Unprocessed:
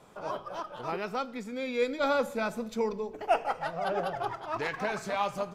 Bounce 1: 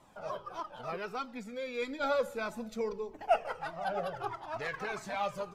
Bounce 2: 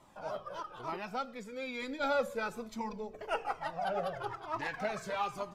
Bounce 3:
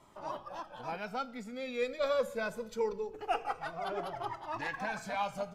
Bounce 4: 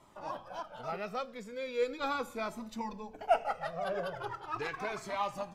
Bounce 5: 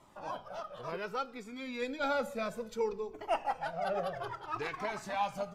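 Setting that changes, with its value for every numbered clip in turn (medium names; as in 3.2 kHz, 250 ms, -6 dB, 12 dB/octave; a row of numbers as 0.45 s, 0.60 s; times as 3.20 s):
Shepard-style flanger, rate: 1.6 Hz, 1.1 Hz, 0.24 Hz, 0.39 Hz, 0.61 Hz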